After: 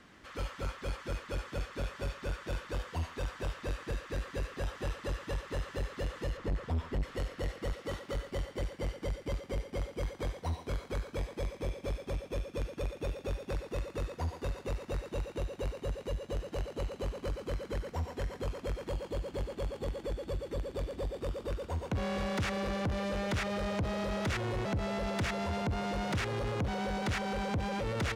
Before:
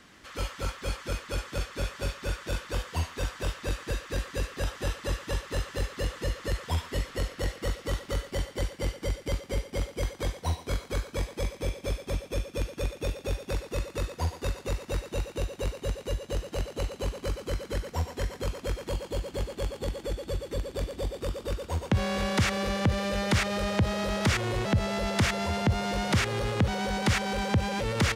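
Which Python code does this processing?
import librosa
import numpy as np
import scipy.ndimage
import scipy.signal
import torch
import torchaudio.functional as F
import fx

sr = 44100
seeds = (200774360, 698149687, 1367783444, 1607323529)

y = fx.tilt_eq(x, sr, slope=-2.0, at=(6.37, 7.03))
y = fx.highpass(y, sr, hz=150.0, slope=6, at=(7.73, 8.15))
y = fx.high_shelf(y, sr, hz=3200.0, db=-8.5)
y = 10.0 ** (-27.0 / 20.0) * np.tanh(y / 10.0 ** (-27.0 / 20.0))
y = y * 10.0 ** (-1.5 / 20.0)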